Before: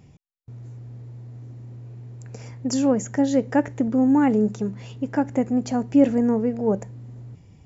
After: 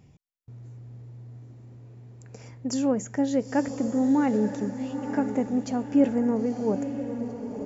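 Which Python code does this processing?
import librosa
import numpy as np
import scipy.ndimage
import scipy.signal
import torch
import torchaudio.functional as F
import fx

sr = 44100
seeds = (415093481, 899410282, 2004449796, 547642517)

y = fx.echo_diffused(x, sr, ms=937, feedback_pct=41, wet_db=-8.5)
y = y * 10.0 ** (-4.5 / 20.0)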